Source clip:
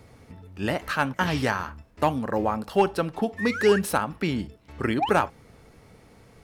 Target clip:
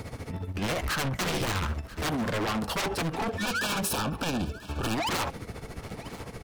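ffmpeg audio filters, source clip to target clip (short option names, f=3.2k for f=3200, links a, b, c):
-filter_complex "[0:a]asplit=3[a][b][c];[a]afade=t=out:st=0.73:d=0.02[d];[b]asubboost=boost=9:cutoff=130,afade=t=in:st=0.73:d=0.02,afade=t=out:st=1.71:d=0.02[e];[c]afade=t=in:st=1.71:d=0.02[f];[d][e][f]amix=inputs=3:normalize=0,aeval=exprs='0.335*sin(PI/2*6.31*val(0)/0.335)':c=same,tremolo=f=14:d=0.76,asoftclip=type=tanh:threshold=-23dB,asettb=1/sr,asplit=3[g][h][i];[g]atrim=end=3.284[j];[h]atrim=start=3.28:end=4.95,asetpts=PTS-STARTPTS,afade=t=in:d=0.004:c=qsin,afade=t=out:st=1.666:d=0.004:c=qsin,asuperstop=centerf=2000:order=12:qfactor=4.6[k];[i]atrim=start=4.946[l];[j][k]acrossfade=d=0.004:c1=hsin:c2=qsin[m];[m][l]acrossfade=d=0.004:c1=qsin:c2=hsin,aecho=1:1:989:0.119,volume=-4dB"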